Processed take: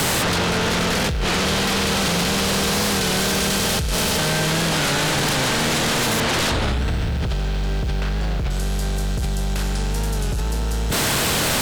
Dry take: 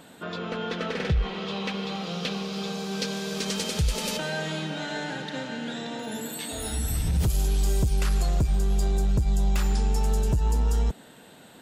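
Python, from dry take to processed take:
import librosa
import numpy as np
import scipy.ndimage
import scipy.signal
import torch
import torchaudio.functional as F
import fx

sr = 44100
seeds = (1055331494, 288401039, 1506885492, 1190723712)

y = fx.bin_compress(x, sr, power=0.4)
y = fx.lowpass(y, sr, hz=3600.0, slope=12, at=(6.2, 8.51))
y = fx.over_compress(y, sr, threshold_db=-29.0, ratio=-1.0)
y = fx.fold_sine(y, sr, drive_db=16, ceiling_db=-10.0)
y = fx.quant_dither(y, sr, seeds[0], bits=8, dither='triangular')
y = fx.record_warp(y, sr, rpm=33.33, depth_cents=100.0)
y = y * librosa.db_to_amplitude(-7.0)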